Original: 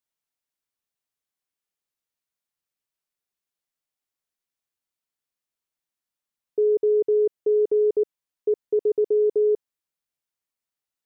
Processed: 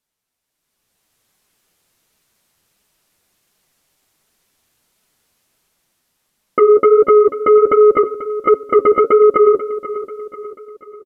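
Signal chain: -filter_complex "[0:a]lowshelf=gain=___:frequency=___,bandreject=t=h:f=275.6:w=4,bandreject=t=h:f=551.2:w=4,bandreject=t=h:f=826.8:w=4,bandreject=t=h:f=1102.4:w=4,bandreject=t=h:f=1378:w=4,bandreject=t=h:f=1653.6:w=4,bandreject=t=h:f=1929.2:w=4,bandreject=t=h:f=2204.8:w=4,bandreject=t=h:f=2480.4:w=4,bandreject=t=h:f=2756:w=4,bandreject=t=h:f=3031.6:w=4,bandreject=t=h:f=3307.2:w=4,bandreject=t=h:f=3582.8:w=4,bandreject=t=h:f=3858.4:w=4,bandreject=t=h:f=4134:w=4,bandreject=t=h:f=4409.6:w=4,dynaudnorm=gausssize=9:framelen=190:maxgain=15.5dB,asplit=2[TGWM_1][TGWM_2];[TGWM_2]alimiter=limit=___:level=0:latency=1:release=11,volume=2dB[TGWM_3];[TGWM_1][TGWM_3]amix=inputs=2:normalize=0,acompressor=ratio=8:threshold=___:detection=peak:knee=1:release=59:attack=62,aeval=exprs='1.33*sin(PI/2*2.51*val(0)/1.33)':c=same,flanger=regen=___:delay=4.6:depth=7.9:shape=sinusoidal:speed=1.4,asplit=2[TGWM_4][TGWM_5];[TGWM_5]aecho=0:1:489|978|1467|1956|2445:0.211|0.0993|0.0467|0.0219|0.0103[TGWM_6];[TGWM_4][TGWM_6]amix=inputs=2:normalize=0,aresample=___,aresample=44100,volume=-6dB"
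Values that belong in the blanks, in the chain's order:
5, 490, -9.5dB, -9dB, -30, 32000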